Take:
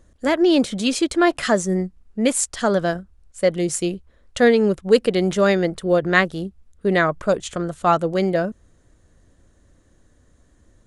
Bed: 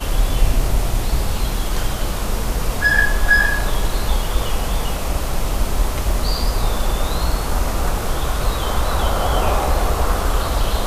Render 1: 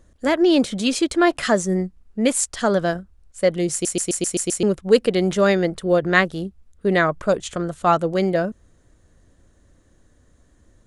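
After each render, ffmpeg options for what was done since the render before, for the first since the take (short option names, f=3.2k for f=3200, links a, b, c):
-filter_complex "[0:a]asplit=8[a][b][c][d][e][f][g][h];[a]atrim=end=3.852[i];[b]atrim=start=3.718:end=3.852[j];[c]atrim=start=3.718:end=3.852[k];[d]atrim=start=3.718:end=3.852[l];[e]atrim=start=3.718:end=3.852[m];[f]atrim=start=3.718:end=3.852[n];[g]atrim=start=3.718:end=3.852[o];[h]atrim=start=4.628[p];[i][j]acrossfade=d=0.004:c1=hsin:c2=hsin[q];[q][k]acrossfade=d=0.004:c1=hsin:c2=hsin[r];[r][l]acrossfade=d=0.004:c1=hsin:c2=hsin[s];[s][m]acrossfade=d=0.004:c1=hsin:c2=hsin[t];[t][n]acrossfade=d=0.004:c1=hsin:c2=hsin[u];[u][o]acrossfade=d=0.004:c1=hsin:c2=hsin[v];[v][p]acrossfade=d=0.004:c1=hsin:c2=hsin"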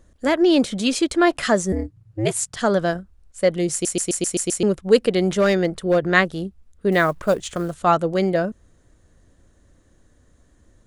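-filter_complex "[0:a]asettb=1/sr,asplit=3[a][b][c];[a]atrim=end=1.724[d];[b]atrim=start=1.72:end=2.57,asetpts=PTS-STARTPTS,afade=t=in:d=0.004:c=qsin,afade=t=out:st=0.846:d=0.004:c=qsin,aeval=exprs='val(0)*sin(2*PI*110*n/s)':c=same[e];[c]atrim=start=2.566[f];[d][e]acrossfade=d=0.004:c1=hsin:c2=qsin[g];[g][f]acrossfade=d=0.004:c1=qsin:c2=hsin,asettb=1/sr,asplit=3[h][i][j];[h]atrim=end=5.224[k];[i]atrim=start=5.22:end=6,asetpts=PTS-STARTPTS,afade=t=in:d=0.004:c=qsin,afade=t=out:st=0.776:d=0.004:c=qsin,volume=11.5dB,asoftclip=hard,volume=-11.5dB[l];[j]atrim=start=5.996[m];[k][l]acrossfade=d=0.004:c1=hsin:c2=qsin[n];[n][m]acrossfade=d=0.004:c1=qsin:c2=hsin,asettb=1/sr,asplit=3[o][p][q];[o]atrim=end=6.924[r];[p]atrim=start=6.92:end=7.75,asetpts=PTS-STARTPTS,afade=t=in:d=0.004:c=qsin,afade=t=out:st=0.826:d=0.004:c=qsin,acrusher=bits=7:mode=log:mix=0:aa=0.000001[s];[q]atrim=start=7.746[t];[r][s]acrossfade=d=0.004:c1=hsin:c2=qsin[u];[u][t]acrossfade=d=0.004:c1=qsin:c2=hsin"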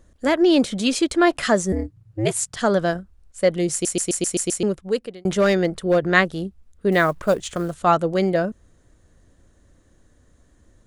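-filter_complex "[0:a]asplit=2[a][b];[a]atrim=end=5.25,asetpts=PTS-STARTPTS,afade=t=out:st=4.47:d=0.78[c];[b]atrim=start=5.25,asetpts=PTS-STARTPTS,afade=t=in:d=0.004:c=hsin[d];[c][d]concat=n=2:v=0:a=1"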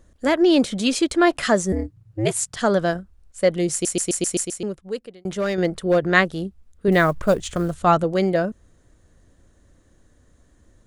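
-filter_complex "[0:a]asettb=1/sr,asplit=3[a][b][c];[a]atrim=end=6.884[d];[b]atrim=start=6.88:end=8.04,asetpts=PTS-STARTPTS,afade=t=in:d=0.004:c=qsin,afade=t=out:st=1.156:d=0.004:c=qsin,lowshelf=f=130:g=10[e];[c]atrim=start=8.036[f];[d][e]acrossfade=d=0.004:c1=hsin:c2=qsin[g];[g][f]acrossfade=d=0.004:c1=qsin:c2=hsin,asplit=3[h][i][j];[h]atrim=end=4.452[k];[i]atrim=start=4.448:end=5.582,asetpts=PTS-STARTPTS,volume=-6dB[l];[j]atrim=start=5.578[m];[k][l]acrossfade=d=0.004:c1=hsin:c2=hsin[n];[n][m]acrossfade=d=0.004:c1=hsin:c2=hsin"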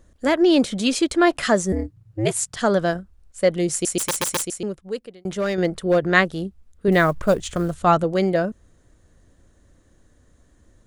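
-filter_complex "[0:a]asettb=1/sr,asplit=3[a][b][c];[a]atrim=end=3.984[d];[b]atrim=start=3.98:end=4.47,asetpts=PTS-STARTPTS,afade=t=in:d=0.004:c=qsin,afade=t=out:st=0.486:d=0.004:c=qsin,aeval=exprs='(mod(7.08*val(0)+1,2)-1)/7.08':c=same[e];[c]atrim=start=4.466[f];[d][e]acrossfade=d=0.004:c1=hsin:c2=qsin[g];[g][f]acrossfade=d=0.004:c1=qsin:c2=hsin"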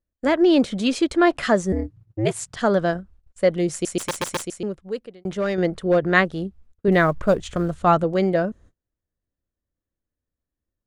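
-af "lowpass=f=3.3k:p=1,agate=range=-30dB:threshold=-47dB:ratio=16:detection=peak"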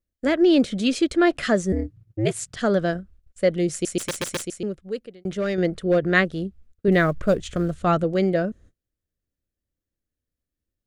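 -af "equalizer=f=930:t=o:w=0.67:g=-10"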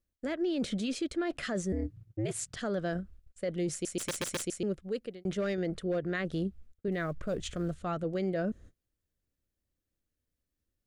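-af "areverse,acompressor=threshold=-26dB:ratio=6,areverse,alimiter=level_in=0.5dB:limit=-24dB:level=0:latency=1:release=119,volume=-0.5dB"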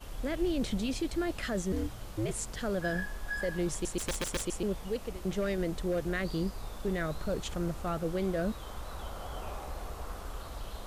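-filter_complex "[1:a]volume=-22.5dB[a];[0:a][a]amix=inputs=2:normalize=0"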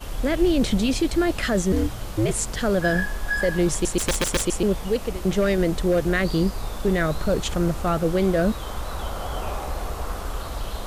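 -af "volume=11dB"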